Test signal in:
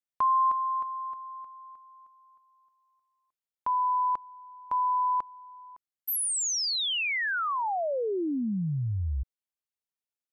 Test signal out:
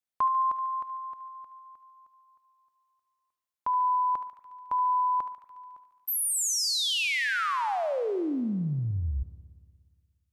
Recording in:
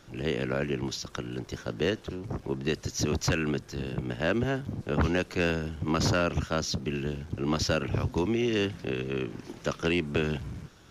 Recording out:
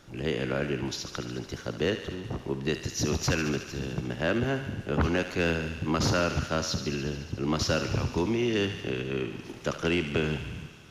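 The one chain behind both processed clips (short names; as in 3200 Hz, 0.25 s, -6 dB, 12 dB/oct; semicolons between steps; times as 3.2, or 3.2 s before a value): thinning echo 72 ms, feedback 80%, high-pass 910 Hz, level -9 dB; spring tank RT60 1.9 s, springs 59 ms, chirp 80 ms, DRR 16 dB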